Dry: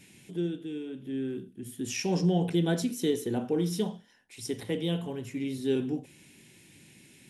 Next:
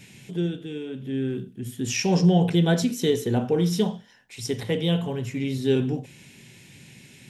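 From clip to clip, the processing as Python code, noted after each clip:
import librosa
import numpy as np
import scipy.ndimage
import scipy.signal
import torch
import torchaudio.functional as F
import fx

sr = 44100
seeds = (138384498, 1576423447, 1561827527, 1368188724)

y = fx.graphic_eq_31(x, sr, hz=(125, 315, 10000), db=(6, -8, -10))
y = F.gain(torch.from_numpy(y), 7.5).numpy()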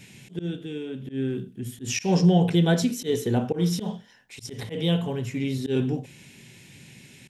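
y = fx.auto_swell(x, sr, attack_ms=108.0)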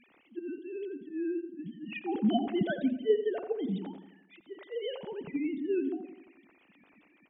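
y = fx.sine_speech(x, sr)
y = fx.echo_filtered(y, sr, ms=86, feedback_pct=56, hz=1400.0, wet_db=-10)
y = F.gain(torch.from_numpy(y), -8.5).numpy()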